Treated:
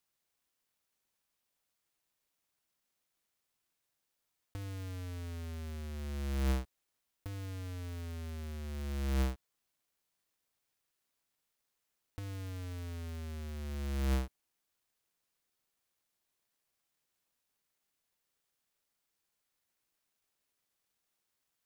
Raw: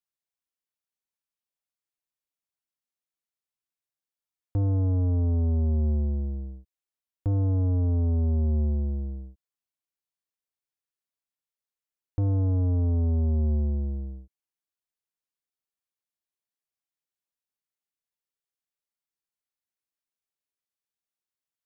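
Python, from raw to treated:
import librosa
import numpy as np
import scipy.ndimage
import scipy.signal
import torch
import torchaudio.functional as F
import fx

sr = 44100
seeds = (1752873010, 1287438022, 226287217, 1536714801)

y = fx.halfwave_hold(x, sr)
y = fx.dynamic_eq(y, sr, hz=860.0, q=1.2, threshold_db=-44.0, ratio=4.0, max_db=-7)
y = fx.over_compress(y, sr, threshold_db=-36.0, ratio=-1.0)
y = F.gain(torch.from_numpy(y), -2.5).numpy()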